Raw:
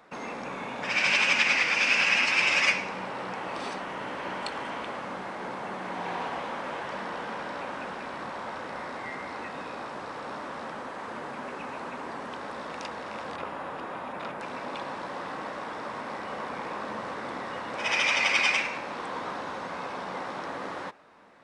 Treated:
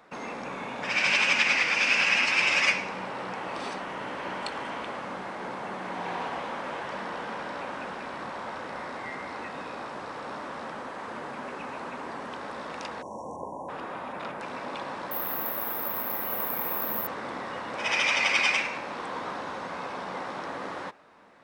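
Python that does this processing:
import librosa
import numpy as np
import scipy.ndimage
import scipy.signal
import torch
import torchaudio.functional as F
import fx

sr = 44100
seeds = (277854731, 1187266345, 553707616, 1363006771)

y = fx.brickwall_bandstop(x, sr, low_hz=1100.0, high_hz=5500.0, at=(13.01, 13.68), fade=0.02)
y = fx.resample_bad(y, sr, factor=3, down='filtered', up='zero_stuff', at=(15.11, 17.07))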